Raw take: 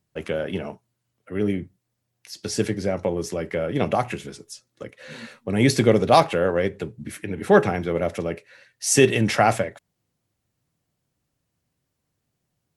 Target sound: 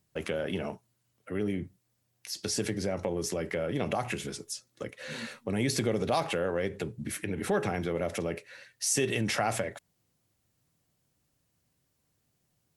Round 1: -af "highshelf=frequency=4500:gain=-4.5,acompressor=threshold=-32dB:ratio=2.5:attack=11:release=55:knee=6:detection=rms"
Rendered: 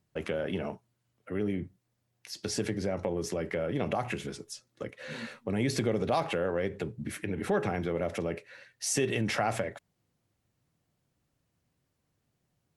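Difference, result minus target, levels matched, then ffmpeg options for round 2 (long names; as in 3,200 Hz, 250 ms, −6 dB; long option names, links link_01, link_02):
8,000 Hz band −3.5 dB
-af "highshelf=frequency=4500:gain=5,acompressor=threshold=-32dB:ratio=2.5:attack=11:release=55:knee=6:detection=rms"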